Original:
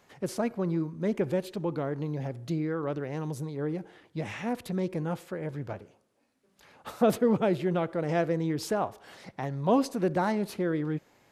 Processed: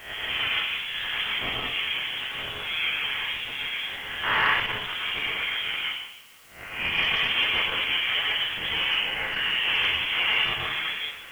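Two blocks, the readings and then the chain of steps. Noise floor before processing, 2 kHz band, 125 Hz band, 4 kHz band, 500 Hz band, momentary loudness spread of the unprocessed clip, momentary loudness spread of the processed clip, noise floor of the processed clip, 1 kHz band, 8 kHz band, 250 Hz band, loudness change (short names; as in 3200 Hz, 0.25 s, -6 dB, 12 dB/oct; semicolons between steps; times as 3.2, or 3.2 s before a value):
-69 dBFS, +18.5 dB, -12.5 dB, +25.0 dB, -13.0 dB, 12 LU, 8 LU, -43 dBFS, +2.0 dB, n/a, -17.0 dB, +5.5 dB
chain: spectral swells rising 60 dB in 0.49 s; in parallel at -2 dB: negative-ratio compressor -37 dBFS; on the sum: hard clip -25 dBFS, distortion -9 dB; Butterworth band-pass 2300 Hz, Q 0.53; plate-style reverb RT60 0.88 s, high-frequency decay 0.55×, pre-delay 0.1 s, DRR -3.5 dB; inverted band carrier 3700 Hz; added noise white -63 dBFS; core saturation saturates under 650 Hz; gain +8 dB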